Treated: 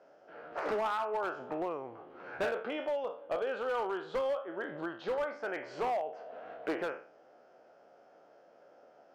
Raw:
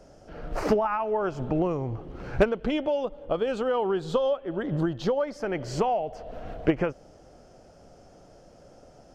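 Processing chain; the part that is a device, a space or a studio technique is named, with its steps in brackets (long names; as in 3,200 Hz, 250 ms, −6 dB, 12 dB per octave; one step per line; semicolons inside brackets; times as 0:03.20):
peak hold with a decay on every bin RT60 0.42 s
megaphone (band-pass filter 470–2,600 Hz; parametric band 1,500 Hz +4 dB 0.31 octaves; hard clipping −22.5 dBFS, distortion −12 dB)
level −5.5 dB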